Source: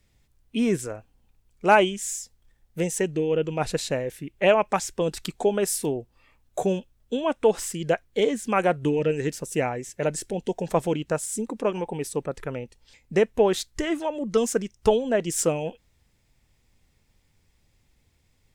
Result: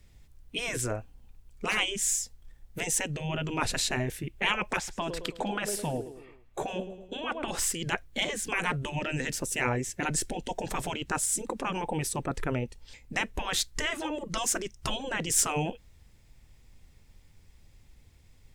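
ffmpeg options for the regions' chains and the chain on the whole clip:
-filter_complex "[0:a]asettb=1/sr,asplit=3[a][b][c];[a]atrim=end=4.774[d];[b]atrim=start=4.77:end=7.48,asetpts=PTS-STARTPTS,afade=t=in:d=0.004:c=qsin,afade=t=out:st=2.706:d=0.004:c=qsin,bass=f=250:g=-6,treble=f=4k:g=-11,aecho=1:1:108|216|324|432:0.133|0.0667|0.0333|0.0167,atrim=end_sample=119511[e];[c]atrim=start=7.476[f];[d][e]acrossfade=d=0.004:c1=hsin:c2=qsin[g];[g][f]acrossfade=d=0.004:c1=qsin:c2=hsin,afftfilt=real='re*lt(hypot(re,im),0.2)':imag='im*lt(hypot(re,im),0.2)':win_size=1024:overlap=0.75,lowshelf=f=82:g=8.5,volume=3.5dB"

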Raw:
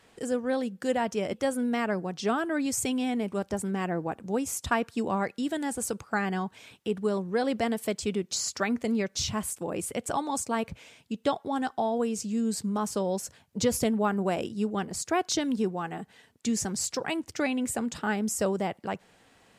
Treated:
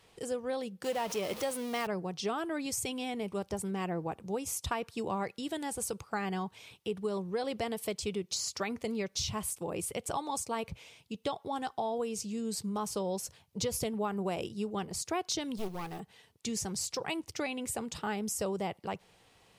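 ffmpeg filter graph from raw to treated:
-filter_complex "[0:a]asettb=1/sr,asplit=3[a][b][c];[a]atrim=end=0.844[d];[b]atrim=start=0.84:end=1.87,asetpts=PTS-STARTPTS,afade=t=in:d=0.004:c=qsin,afade=t=out:st=1.026:d=0.004:c=qsin,aeval=exprs='val(0)+0.5*0.0251*sgn(val(0))':c=same,highpass=f=230:p=1[e];[c]atrim=start=1.866[f];[d][e]acrossfade=d=0.004:c1=hsin:c2=qsin[g];[g][f]acrossfade=d=0.004:c1=qsin:c2=hsin,asettb=1/sr,asplit=3[h][i][j];[h]atrim=end=15.574[k];[i]atrim=start=15.57:end=16,asetpts=PTS-STARTPTS,afade=t=in:d=0.004:c=qsin,afade=t=out:st=0.426:d=0.004:c=qsin,aeval=exprs='clip(val(0),-1,0.0112)':c=same,acrusher=bits=5:mode=log:mix=0:aa=0.000001[l];[j]atrim=start=15.996[m];[k][l]acrossfade=d=0.004:c1=hsin:c2=qsin[n];[n][m]acrossfade=d=0.004:c1=qsin:c2=hsin,equalizer=f=250:t=o:w=0.67:g=-10,equalizer=f=630:t=o:w=0.67:g=-4,equalizer=f=1.6k:t=o:w=0.67:g=-8,acompressor=threshold=-29dB:ratio=6,equalizer=f=7.4k:t=o:w=0.34:g=-4.5"

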